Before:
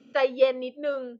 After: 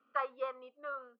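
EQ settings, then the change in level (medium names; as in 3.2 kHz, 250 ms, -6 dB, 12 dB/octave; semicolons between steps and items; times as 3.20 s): band-pass filter 1.2 kHz, Q 14; distance through air 55 m; +10.5 dB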